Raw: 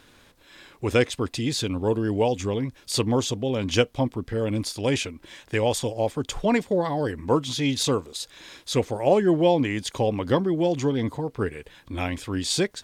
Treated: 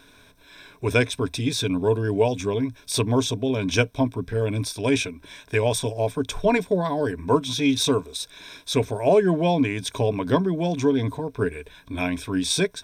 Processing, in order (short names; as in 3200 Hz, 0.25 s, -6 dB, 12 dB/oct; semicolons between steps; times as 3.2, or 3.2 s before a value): ripple EQ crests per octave 1.6, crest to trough 11 dB